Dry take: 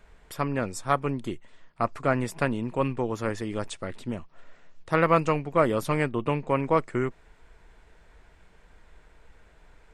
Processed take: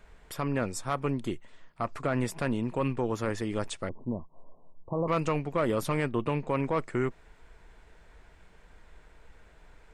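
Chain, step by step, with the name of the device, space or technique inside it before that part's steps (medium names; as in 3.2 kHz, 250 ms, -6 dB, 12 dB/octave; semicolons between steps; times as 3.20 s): soft clipper into limiter (saturation -13 dBFS, distortion -18 dB; peak limiter -19.5 dBFS, peak gain reduction 6 dB); 3.89–5.08 s: Chebyshev low-pass 1.1 kHz, order 8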